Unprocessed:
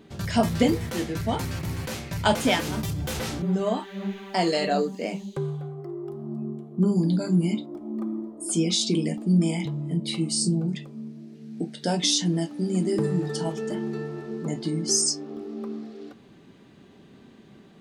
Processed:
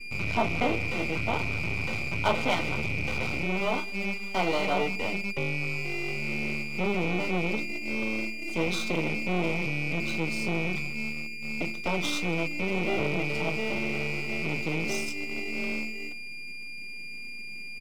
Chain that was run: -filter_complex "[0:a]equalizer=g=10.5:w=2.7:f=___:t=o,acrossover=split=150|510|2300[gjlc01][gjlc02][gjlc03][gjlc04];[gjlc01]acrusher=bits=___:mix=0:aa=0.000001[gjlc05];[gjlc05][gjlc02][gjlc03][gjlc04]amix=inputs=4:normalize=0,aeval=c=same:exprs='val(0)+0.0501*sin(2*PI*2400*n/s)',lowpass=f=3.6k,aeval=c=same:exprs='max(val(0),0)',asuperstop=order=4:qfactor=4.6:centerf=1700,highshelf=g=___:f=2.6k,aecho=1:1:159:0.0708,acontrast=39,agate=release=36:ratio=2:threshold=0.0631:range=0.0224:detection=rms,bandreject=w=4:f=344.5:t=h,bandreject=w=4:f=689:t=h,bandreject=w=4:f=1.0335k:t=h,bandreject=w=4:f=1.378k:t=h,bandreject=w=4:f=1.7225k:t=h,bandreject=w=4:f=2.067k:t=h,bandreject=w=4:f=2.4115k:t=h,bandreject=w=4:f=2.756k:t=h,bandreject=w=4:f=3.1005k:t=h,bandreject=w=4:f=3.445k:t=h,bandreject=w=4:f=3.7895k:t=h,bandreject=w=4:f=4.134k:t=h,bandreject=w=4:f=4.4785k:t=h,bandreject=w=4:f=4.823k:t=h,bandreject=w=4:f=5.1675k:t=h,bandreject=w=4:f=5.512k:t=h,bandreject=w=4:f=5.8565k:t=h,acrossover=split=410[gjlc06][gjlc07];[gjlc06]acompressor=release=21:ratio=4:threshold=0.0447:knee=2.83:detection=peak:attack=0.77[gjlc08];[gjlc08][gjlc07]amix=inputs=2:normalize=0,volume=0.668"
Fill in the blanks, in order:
98, 6, -4.5